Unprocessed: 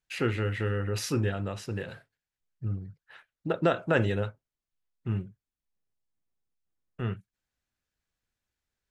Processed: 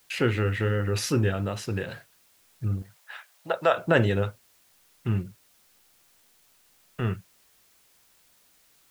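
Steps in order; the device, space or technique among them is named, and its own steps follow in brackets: noise-reduction cassette on a plain deck (mismatched tape noise reduction encoder only; wow and flutter; white noise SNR 33 dB); 2.82–3.77 resonant low shelf 440 Hz -13.5 dB, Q 1.5; gain +4 dB

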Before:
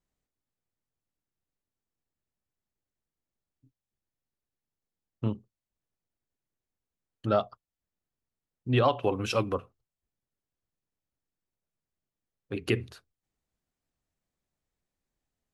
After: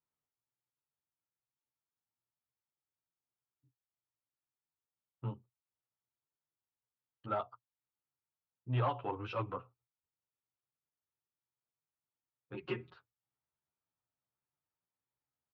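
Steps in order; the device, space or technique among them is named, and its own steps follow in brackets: barber-pole flanger into a guitar amplifier (endless flanger 10.6 ms +1.1 Hz; soft clip -21.5 dBFS, distortion -16 dB; speaker cabinet 87–3500 Hz, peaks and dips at 120 Hz +7 dB, 210 Hz -6 dB, 910 Hz +9 dB, 1300 Hz +8 dB); 12.54–12.94 comb 5.5 ms, depth 83%; gain -8 dB

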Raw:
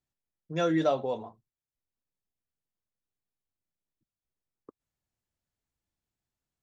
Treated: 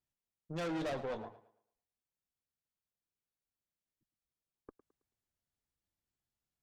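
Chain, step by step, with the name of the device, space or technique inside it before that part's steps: rockabilly slapback (tube stage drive 34 dB, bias 0.65; tape echo 0.109 s, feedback 34%, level -14 dB, low-pass 5400 Hz); gain -1 dB

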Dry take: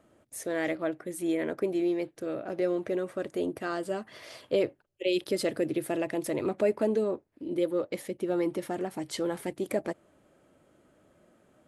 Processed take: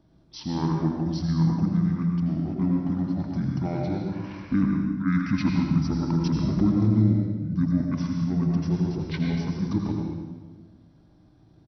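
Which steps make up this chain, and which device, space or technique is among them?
monster voice (pitch shift -12 st; low shelf 230 Hz +5 dB; echo 83 ms -10 dB; reverb RT60 1.4 s, pre-delay 93 ms, DRR 0.5 dB)

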